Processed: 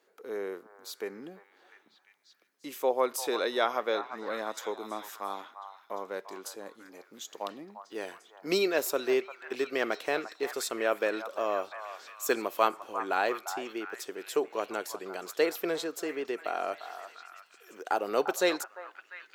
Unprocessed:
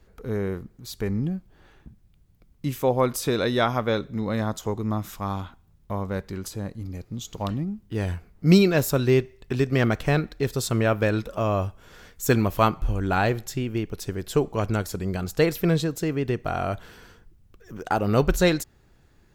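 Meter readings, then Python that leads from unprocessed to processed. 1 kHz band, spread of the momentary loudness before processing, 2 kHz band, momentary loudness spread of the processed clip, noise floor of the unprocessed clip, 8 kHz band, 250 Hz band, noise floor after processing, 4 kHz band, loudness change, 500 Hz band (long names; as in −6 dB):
−4.0 dB, 13 LU, −4.0 dB, 17 LU, −58 dBFS, −4.5 dB, −13.5 dB, −64 dBFS, −4.5 dB, −7.0 dB, −5.0 dB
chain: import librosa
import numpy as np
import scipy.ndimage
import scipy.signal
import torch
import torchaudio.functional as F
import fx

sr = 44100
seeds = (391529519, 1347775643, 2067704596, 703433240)

p1 = scipy.signal.sosfilt(scipy.signal.butter(4, 350.0, 'highpass', fs=sr, output='sos'), x)
p2 = p1 + fx.echo_stepped(p1, sr, ms=348, hz=1000.0, octaves=0.7, feedback_pct=70, wet_db=-7.5, dry=0)
y = F.gain(torch.from_numpy(p2), -4.5).numpy()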